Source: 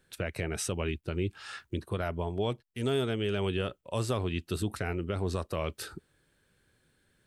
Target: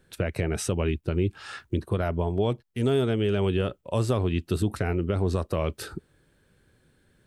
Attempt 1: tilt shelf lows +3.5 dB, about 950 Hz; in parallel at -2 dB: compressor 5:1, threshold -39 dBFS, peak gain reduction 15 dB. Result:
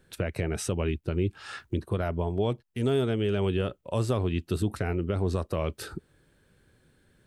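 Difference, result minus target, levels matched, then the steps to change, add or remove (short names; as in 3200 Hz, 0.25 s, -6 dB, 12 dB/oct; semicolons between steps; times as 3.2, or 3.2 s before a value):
compressor: peak gain reduction +9 dB
change: compressor 5:1, threshold -27.5 dBFS, peak gain reduction 5.5 dB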